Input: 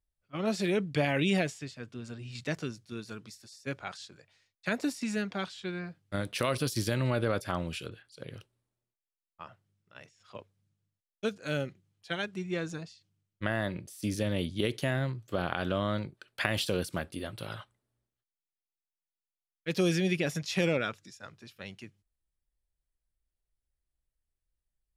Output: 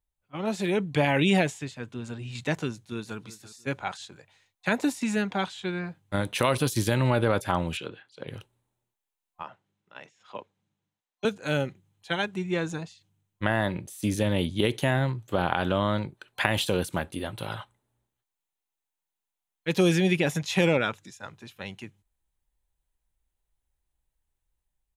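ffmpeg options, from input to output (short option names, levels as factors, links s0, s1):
-filter_complex "[0:a]asplit=2[s0][s1];[s1]afade=t=in:st=2.72:d=0.01,afade=t=out:st=3.18:d=0.01,aecho=0:1:340|680:0.133352|0.033338[s2];[s0][s2]amix=inputs=2:normalize=0,asettb=1/sr,asplit=3[s3][s4][s5];[s3]atrim=end=7.774[s6];[s4]atrim=start=7.77:end=8.28,asetpts=PTS-STARTPTS,afade=t=in:d=0.004:c=qsin,afade=t=out:st=0.506:d=0.004:c=qsin,highpass=180,lowpass=4600[s7];[s5]atrim=start=8.276[s8];[s6][s7]acrossfade=d=0.004:c1=hsin:c2=qsin[s9];[s9][s8]acrossfade=d=0.004:c1=qsin:c2=hsin,asettb=1/sr,asplit=3[s10][s11][s12];[s10]atrim=end=9.434[s13];[s11]atrim=start=9.43:end=11.25,asetpts=PTS-STARTPTS,afade=t=in:d=0.004:c=qsin,afade=t=out:st=1.816:d=0.004:c=qsin,acrossover=split=160 6800:gain=0.112 1 0.2[s14][s15][s16];[s14][s15][s16]amix=inputs=3:normalize=0[s17];[s12]atrim=start=11.246[s18];[s13][s17]acrossfade=d=0.004:c1=hsin:c2=qsin[s19];[s19][s18]acrossfade=d=0.004:c1=qsin:c2=hsin,superequalizer=9b=2:14b=0.501,dynaudnorm=f=140:g=13:m=1.88"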